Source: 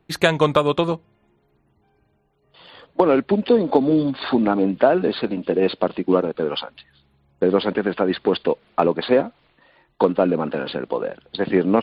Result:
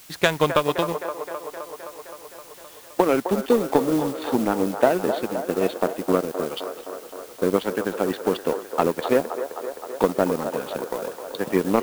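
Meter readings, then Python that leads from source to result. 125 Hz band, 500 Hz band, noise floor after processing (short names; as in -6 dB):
-4.5 dB, -3.0 dB, -45 dBFS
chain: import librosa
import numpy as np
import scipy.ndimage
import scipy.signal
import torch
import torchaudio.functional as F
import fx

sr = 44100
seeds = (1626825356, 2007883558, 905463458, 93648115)

y = fx.quant_dither(x, sr, seeds[0], bits=6, dither='triangular')
y = fx.power_curve(y, sr, exponent=1.4)
y = fx.echo_wet_bandpass(y, sr, ms=260, feedback_pct=73, hz=820.0, wet_db=-8)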